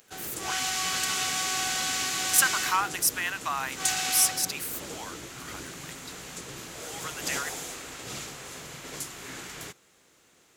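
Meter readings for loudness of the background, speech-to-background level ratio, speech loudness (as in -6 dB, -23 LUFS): -31.5 LUFS, 4.0 dB, -27.5 LUFS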